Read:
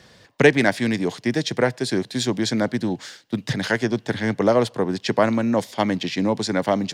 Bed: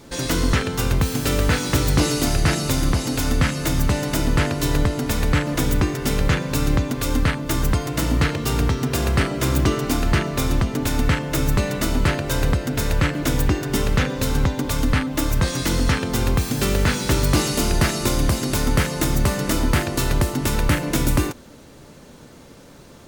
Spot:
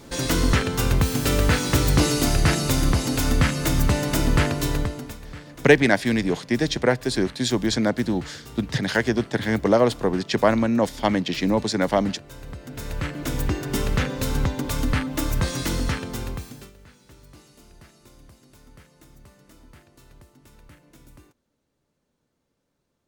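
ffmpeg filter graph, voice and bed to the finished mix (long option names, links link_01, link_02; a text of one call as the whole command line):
ffmpeg -i stem1.wav -i stem2.wav -filter_complex "[0:a]adelay=5250,volume=0dB[link_01];[1:a]volume=16dB,afade=type=out:start_time=4.45:duration=0.74:silence=0.105925,afade=type=in:start_time=12.45:duration=1.29:silence=0.149624,afade=type=out:start_time=15.61:duration=1.11:silence=0.0421697[link_02];[link_01][link_02]amix=inputs=2:normalize=0" out.wav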